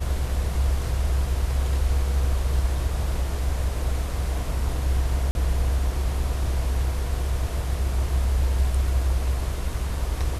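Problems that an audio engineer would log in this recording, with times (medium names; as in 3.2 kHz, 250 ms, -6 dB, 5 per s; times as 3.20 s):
5.31–5.35 s: dropout 41 ms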